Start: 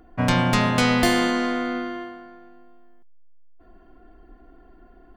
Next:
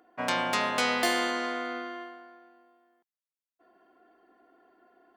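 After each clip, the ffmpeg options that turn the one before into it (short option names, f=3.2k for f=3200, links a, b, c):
-af "highpass=430,volume=-4.5dB"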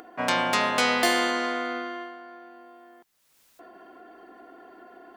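-af "acompressor=mode=upward:threshold=-42dB:ratio=2.5,volume=4dB"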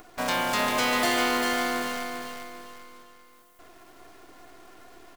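-filter_complex "[0:a]acrossover=split=6500[a][b];[a]acrusher=bits=6:dc=4:mix=0:aa=0.000001[c];[c][b]amix=inputs=2:normalize=0,asoftclip=type=tanh:threshold=-19.5dB,aecho=1:1:396|792|1188|1584|1980:0.531|0.202|0.0767|0.0291|0.0111"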